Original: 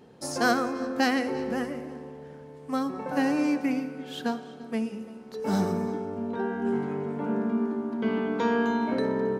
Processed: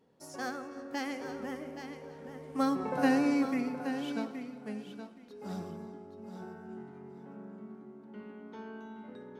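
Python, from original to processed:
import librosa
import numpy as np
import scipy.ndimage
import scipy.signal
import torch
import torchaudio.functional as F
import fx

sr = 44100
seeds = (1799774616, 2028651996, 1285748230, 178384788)

y = fx.doppler_pass(x, sr, speed_mps=19, closest_m=9.5, pass_at_s=2.83)
y = fx.echo_feedback(y, sr, ms=822, feedback_pct=17, wet_db=-9.5)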